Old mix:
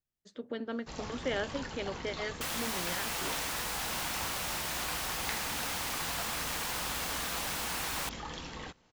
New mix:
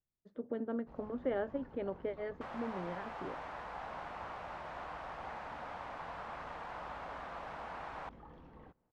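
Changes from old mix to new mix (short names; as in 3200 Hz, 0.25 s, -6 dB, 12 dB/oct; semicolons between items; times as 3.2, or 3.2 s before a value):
first sound -10.5 dB; master: add LPF 1000 Hz 12 dB/oct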